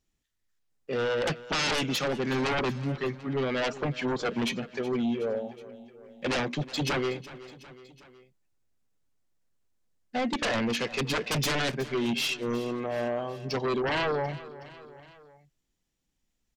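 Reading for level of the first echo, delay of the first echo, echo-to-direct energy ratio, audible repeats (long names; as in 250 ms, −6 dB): −17.0 dB, 370 ms, −15.5 dB, 3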